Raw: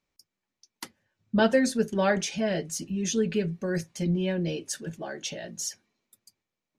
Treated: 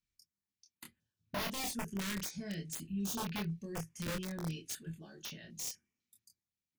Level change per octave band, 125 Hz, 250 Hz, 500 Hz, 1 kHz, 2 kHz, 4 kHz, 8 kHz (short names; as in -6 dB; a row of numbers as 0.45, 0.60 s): -9.5, -12.5, -19.5, -11.0, -11.5, -7.5, -8.0 dB